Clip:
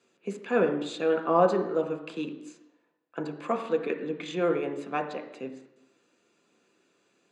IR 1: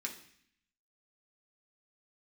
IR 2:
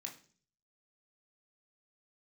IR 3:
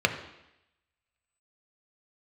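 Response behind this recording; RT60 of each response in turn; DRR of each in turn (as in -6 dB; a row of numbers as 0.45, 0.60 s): 3; 0.60, 0.45, 0.85 s; -0.5, 0.0, 5.0 dB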